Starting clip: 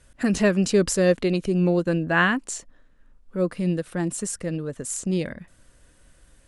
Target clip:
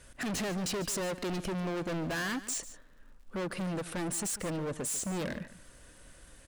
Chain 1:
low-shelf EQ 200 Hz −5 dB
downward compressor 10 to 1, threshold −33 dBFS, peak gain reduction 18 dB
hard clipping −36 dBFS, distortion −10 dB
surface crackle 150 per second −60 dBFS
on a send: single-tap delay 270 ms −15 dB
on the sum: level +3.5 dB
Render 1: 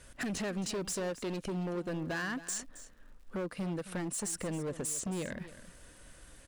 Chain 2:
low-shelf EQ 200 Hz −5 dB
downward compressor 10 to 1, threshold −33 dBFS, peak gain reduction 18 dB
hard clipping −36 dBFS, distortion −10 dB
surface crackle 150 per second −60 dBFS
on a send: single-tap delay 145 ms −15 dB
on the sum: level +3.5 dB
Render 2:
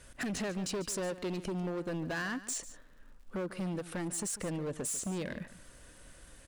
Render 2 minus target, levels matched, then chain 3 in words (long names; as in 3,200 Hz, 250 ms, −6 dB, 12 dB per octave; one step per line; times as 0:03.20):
downward compressor: peak gain reduction +10 dB
low-shelf EQ 200 Hz −5 dB
downward compressor 10 to 1, threshold −22 dBFS, peak gain reduction 8 dB
hard clipping −36 dBFS, distortion −4 dB
surface crackle 150 per second −60 dBFS
on a send: single-tap delay 145 ms −15 dB
on the sum: level +3.5 dB